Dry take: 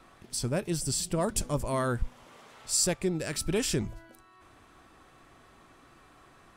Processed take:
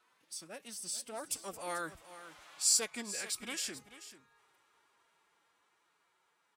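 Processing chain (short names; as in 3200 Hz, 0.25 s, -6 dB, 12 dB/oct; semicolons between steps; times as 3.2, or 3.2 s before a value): Doppler pass-by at 2.48, 14 m/s, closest 11 m; HPF 1300 Hz 6 dB/oct; formant-preserving pitch shift +4.5 st; on a send: echo 0.438 s -14 dB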